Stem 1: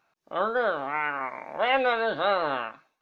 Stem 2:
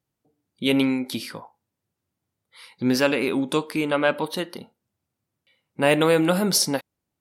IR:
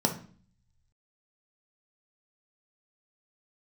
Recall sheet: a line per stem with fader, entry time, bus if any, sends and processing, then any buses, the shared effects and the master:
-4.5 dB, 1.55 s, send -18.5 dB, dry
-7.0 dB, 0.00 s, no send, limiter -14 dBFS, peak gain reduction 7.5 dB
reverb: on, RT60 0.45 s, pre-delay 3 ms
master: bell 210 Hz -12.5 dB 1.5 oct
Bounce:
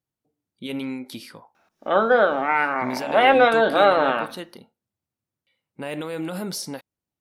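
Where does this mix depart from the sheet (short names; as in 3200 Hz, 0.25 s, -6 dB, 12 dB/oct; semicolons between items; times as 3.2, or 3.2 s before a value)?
stem 1 -4.5 dB -> +5.5 dB; master: missing bell 210 Hz -12.5 dB 1.5 oct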